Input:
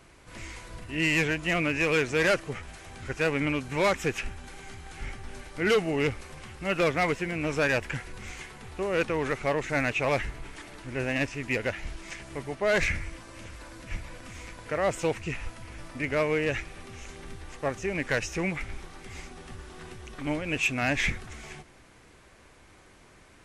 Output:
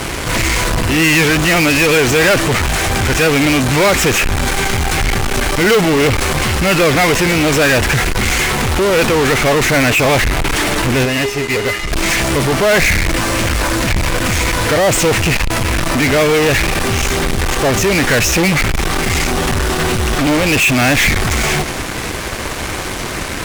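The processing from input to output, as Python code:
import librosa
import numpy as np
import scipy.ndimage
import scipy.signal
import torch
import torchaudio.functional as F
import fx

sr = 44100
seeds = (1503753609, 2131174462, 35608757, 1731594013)

p1 = fx.comb_fb(x, sr, f0_hz=410.0, decay_s=0.33, harmonics='odd', damping=0.0, mix_pct=90, at=(11.04, 11.91), fade=0.02)
p2 = fx.fuzz(p1, sr, gain_db=54.0, gate_db=-57.0)
p3 = p1 + (p2 * librosa.db_to_amplitude(-5.0))
y = p3 * librosa.db_to_amplitude(4.5)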